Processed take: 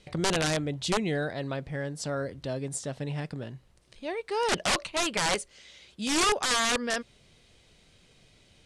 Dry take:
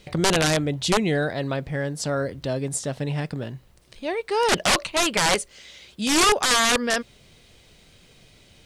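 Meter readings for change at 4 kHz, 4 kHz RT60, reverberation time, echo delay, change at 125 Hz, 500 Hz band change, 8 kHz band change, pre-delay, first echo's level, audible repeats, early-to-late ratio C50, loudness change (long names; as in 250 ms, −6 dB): −6.5 dB, no reverb audible, no reverb audible, no echo audible, −6.5 dB, −6.5 dB, −6.5 dB, no reverb audible, no echo audible, no echo audible, no reverb audible, −6.5 dB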